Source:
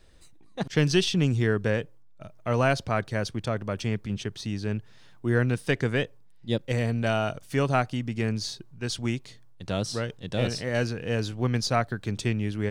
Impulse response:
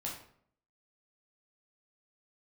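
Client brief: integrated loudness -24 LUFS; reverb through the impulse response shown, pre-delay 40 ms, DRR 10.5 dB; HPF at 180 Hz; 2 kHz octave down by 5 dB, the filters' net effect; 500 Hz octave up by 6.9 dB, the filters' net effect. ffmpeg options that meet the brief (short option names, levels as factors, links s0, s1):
-filter_complex "[0:a]highpass=180,equalizer=f=500:t=o:g=9,equalizer=f=2000:t=o:g=-7.5,asplit=2[s0][s1];[1:a]atrim=start_sample=2205,adelay=40[s2];[s1][s2]afir=irnorm=-1:irlink=0,volume=0.282[s3];[s0][s3]amix=inputs=2:normalize=0,volume=1.12"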